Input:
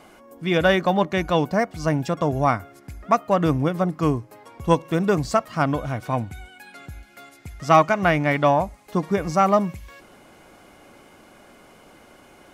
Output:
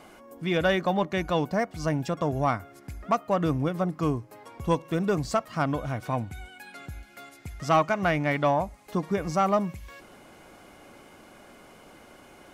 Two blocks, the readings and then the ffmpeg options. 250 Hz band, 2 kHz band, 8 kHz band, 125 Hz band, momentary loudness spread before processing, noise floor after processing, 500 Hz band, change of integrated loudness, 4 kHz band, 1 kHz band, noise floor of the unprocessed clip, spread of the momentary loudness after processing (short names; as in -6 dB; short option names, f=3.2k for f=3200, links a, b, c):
-5.0 dB, -5.5 dB, -4.5 dB, -5.0 dB, 11 LU, -52 dBFS, -5.5 dB, -5.5 dB, -5.0 dB, -6.0 dB, -51 dBFS, 19 LU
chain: -filter_complex "[0:a]asplit=2[a][b];[b]acompressor=threshold=-31dB:ratio=6,volume=-2.5dB[c];[a][c]amix=inputs=2:normalize=0,asoftclip=type=tanh:threshold=-5.5dB,volume=-6dB"